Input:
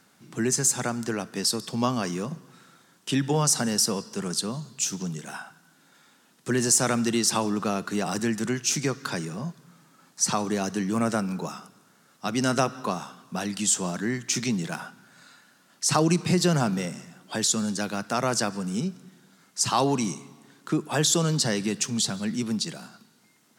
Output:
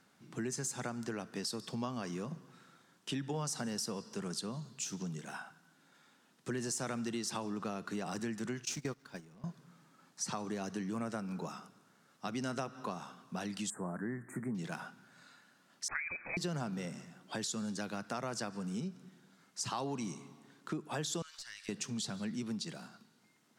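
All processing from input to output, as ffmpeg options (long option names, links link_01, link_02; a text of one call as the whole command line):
ffmpeg -i in.wav -filter_complex "[0:a]asettb=1/sr,asplit=3[link_01][link_02][link_03];[link_01]atrim=end=8.654[link_04];[link_02]atrim=start=8.65:end=9.44,asetpts=PTS-STARTPTS,afade=type=in:duration=0.004:curve=qsin,afade=type=out:start_time=0.786:duration=0.004:curve=qsin,aeval=exprs='val(0)+0.5*0.0224*sgn(val(0))':channel_layout=same,agate=range=-21dB:threshold=-26dB:ratio=16:release=100:detection=peak[link_05];[link_03]atrim=start=9.436[link_06];[link_04][link_05]acrossfade=duration=0.004:curve1=hsin:curve2=qsin[link_07];[link_07][link_06]acrossfade=duration=0.004:curve1=qsin:curve2=hsin,asettb=1/sr,asplit=3[link_08][link_09][link_10];[link_08]atrim=end=13.704[link_11];[link_09]atrim=start=13.7:end=14.55,asetpts=PTS-STARTPTS,afade=type=in:duration=0.004:curve=qsin,afade=type=out:start_time=0.846:duration=0.004:curve=qsin,asuperstop=centerf=4100:order=12:qfactor=0.63,highshelf=frequency=9500:gain=-6[link_12];[link_10]atrim=start=14.546[link_13];[link_11][link_12]acrossfade=duration=0.004:curve1=hsin:curve2=qsin[link_14];[link_14][link_13]acrossfade=duration=0.004:curve1=qsin:curve2=hsin,asettb=1/sr,asplit=3[link_15][link_16][link_17];[link_15]atrim=end=15.884[link_18];[link_16]atrim=start=15.88:end=16.37,asetpts=PTS-STARTPTS,afade=type=in:duration=0.004:curve=qsin,afade=type=out:start_time=0.486:duration=0.004:curve=qsin,highpass=420,lowpass=frequency=2300:width_type=q:width=0.5098,lowpass=frequency=2300:width_type=q:width=0.6013,lowpass=frequency=2300:width_type=q:width=0.9,lowpass=frequency=2300:width_type=q:width=2.563,afreqshift=-2700[link_19];[link_17]atrim=start=16.366[link_20];[link_18][link_19]acrossfade=duration=0.004:curve1=hsin:curve2=qsin[link_21];[link_21][link_20]acrossfade=duration=0.004:curve1=qsin:curve2=hsin,asettb=1/sr,asplit=3[link_22][link_23][link_24];[link_22]atrim=end=21.224[link_25];[link_23]atrim=start=21.22:end=21.69,asetpts=PTS-STARTPTS,afade=type=in:duration=0.004:curve=qsin,afade=type=out:start_time=0.466:duration=0.004:curve=qsin,highpass=frequency=1400:width=0.5412,highpass=frequency=1400:width=1.3066,acompressor=threshold=-38dB:ratio=2.5:attack=3.2:release=140:knee=1:detection=peak,aeval=exprs='(tanh(20*val(0)+0.3)-tanh(0.3))/20':channel_layout=same[link_26];[link_24]atrim=start=21.686[link_27];[link_25][link_26]acrossfade=duration=0.004:curve1=hsin:curve2=qsin[link_28];[link_28][link_27]acrossfade=duration=0.004:curve1=qsin:curve2=hsin,highshelf=frequency=6700:gain=-7.5,acompressor=threshold=-30dB:ratio=3,volume=-6.5dB" out.wav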